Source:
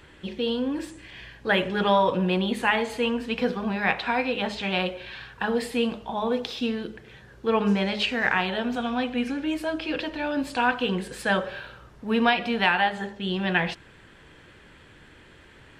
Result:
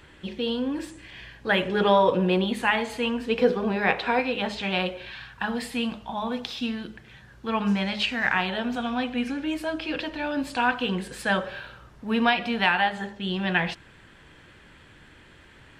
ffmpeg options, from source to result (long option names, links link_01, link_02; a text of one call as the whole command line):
ffmpeg -i in.wav -af "asetnsamples=nb_out_samples=441:pad=0,asendcmd='1.68 equalizer g 5;2.44 equalizer g -3.5;3.27 equalizer g 8;4.19 equalizer g -1;5.11 equalizer g -10;8.34 equalizer g -3.5',equalizer=frequency=440:width_type=o:width=0.71:gain=-2" out.wav